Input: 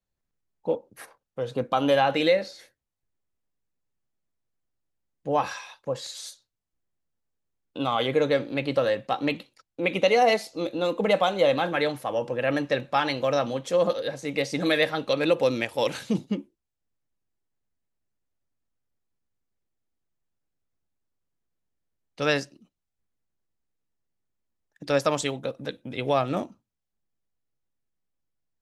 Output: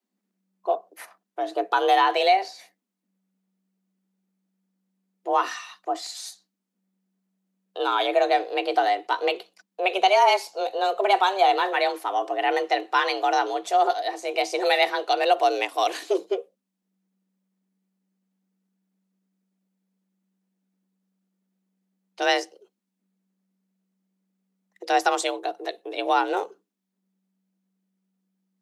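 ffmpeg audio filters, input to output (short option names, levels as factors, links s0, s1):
-af "afreqshift=190,volume=1.26"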